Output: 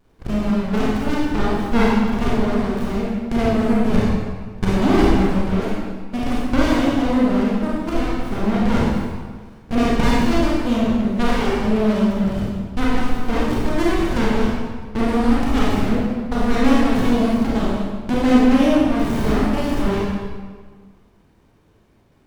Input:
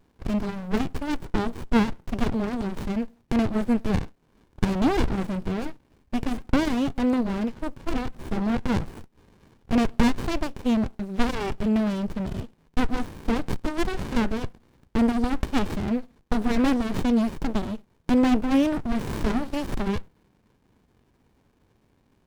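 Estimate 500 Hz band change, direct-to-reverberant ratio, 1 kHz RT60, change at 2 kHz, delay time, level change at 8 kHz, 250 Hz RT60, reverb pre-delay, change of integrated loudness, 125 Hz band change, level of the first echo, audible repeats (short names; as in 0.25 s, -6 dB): +8.5 dB, -6.5 dB, 1.6 s, +7.5 dB, none, +6.0 dB, 1.6 s, 28 ms, +6.5 dB, +7.5 dB, none, none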